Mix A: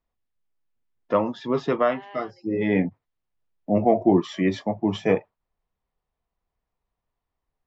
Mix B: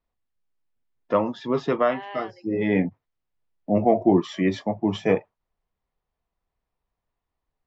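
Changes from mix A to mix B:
second voice +6.0 dB; reverb: on, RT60 1.0 s

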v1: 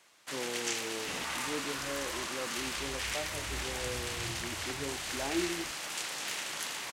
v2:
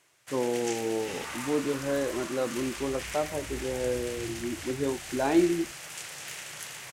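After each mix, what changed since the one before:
speech +11.0 dB; first sound: add graphic EQ 125/250/1000/4000 Hz +11/-11/-6/-6 dB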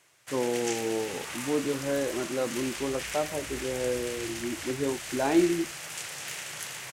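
second sound -6.5 dB; reverb: on, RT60 2.8 s

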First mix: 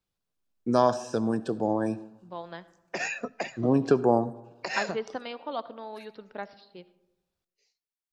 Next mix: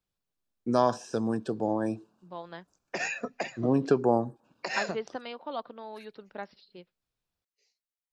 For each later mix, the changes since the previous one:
reverb: off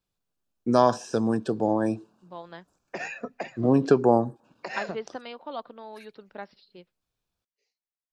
first voice +4.5 dB; background: add high shelf 3400 Hz -11 dB

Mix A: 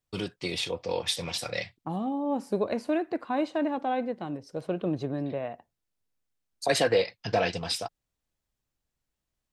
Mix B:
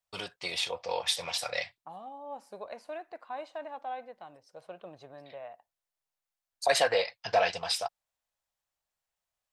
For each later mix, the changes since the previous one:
second voice -10.0 dB; master: add resonant low shelf 460 Hz -12.5 dB, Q 1.5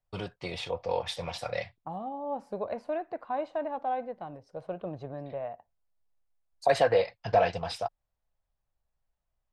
second voice +5.0 dB; master: add tilt -4 dB/oct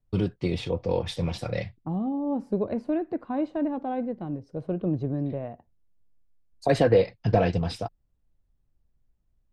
master: add resonant low shelf 460 Hz +12.5 dB, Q 1.5

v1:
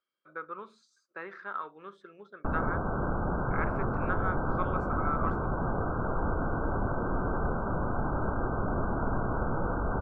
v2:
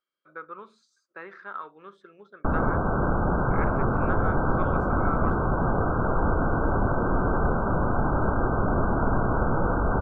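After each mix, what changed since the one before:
background +6.5 dB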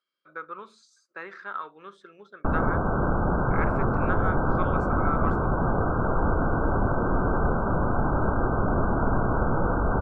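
speech: remove tape spacing loss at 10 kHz 23 dB; master: add air absorption 82 m

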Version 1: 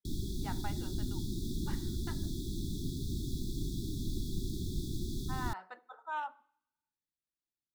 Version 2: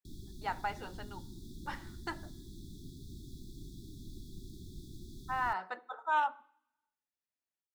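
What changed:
speech +8.0 dB; background -11.5 dB

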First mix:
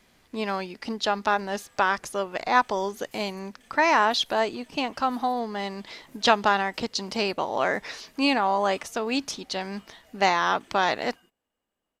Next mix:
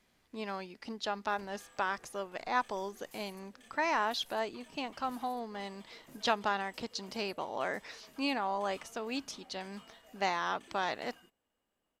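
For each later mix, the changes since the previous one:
speech -10.5 dB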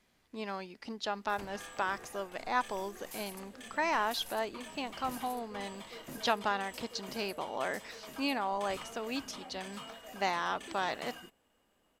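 background +11.0 dB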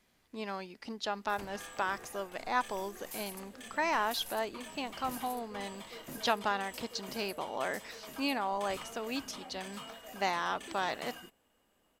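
master: add high shelf 12000 Hz +6.5 dB

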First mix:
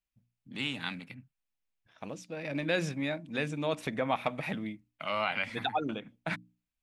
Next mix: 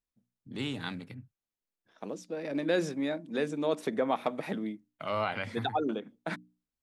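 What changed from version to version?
second voice: add Chebyshev high-pass 200 Hz, order 3; master: add fifteen-band EQ 100 Hz +10 dB, 400 Hz +9 dB, 2500 Hz -8 dB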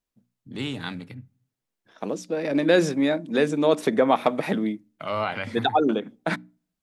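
second voice +8.5 dB; reverb: on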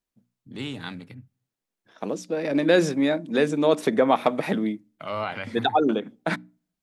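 first voice: send -9.0 dB

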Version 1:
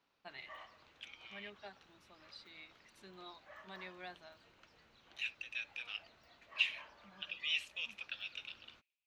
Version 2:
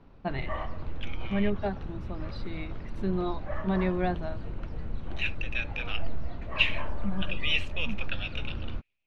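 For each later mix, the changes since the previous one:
master: remove differentiator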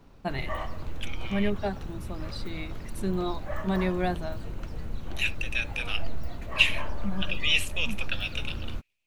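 master: remove air absorption 220 m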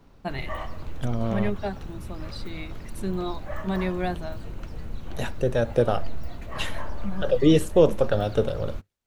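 second voice: remove resonant high-pass 2500 Hz, resonance Q 10

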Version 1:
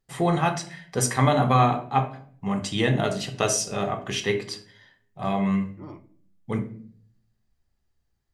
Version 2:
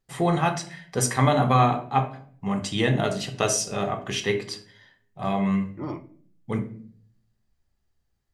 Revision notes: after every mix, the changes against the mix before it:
second voice +9.0 dB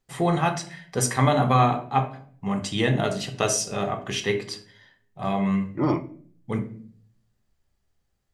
second voice +10.0 dB

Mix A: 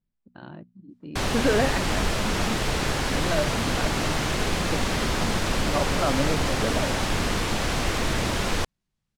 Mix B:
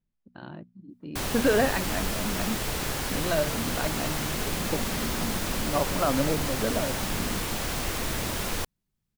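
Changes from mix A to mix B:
background -6.0 dB; master: remove air absorption 58 m

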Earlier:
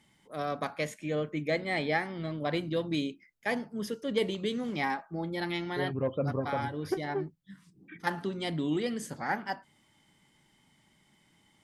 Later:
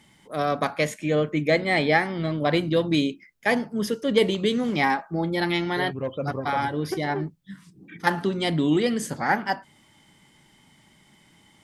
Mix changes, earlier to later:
first voice +9.0 dB; second voice: remove air absorption 420 m

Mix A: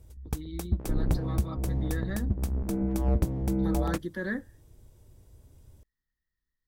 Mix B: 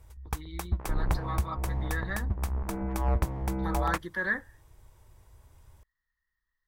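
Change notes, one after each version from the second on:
master: add ten-band EQ 125 Hz -3 dB, 250 Hz -8 dB, 500 Hz -3 dB, 1000 Hz +10 dB, 2000 Hz +6 dB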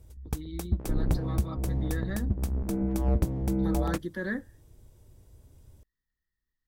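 master: add ten-band EQ 125 Hz +3 dB, 250 Hz +8 dB, 500 Hz +3 dB, 1000 Hz -10 dB, 2000 Hz -6 dB

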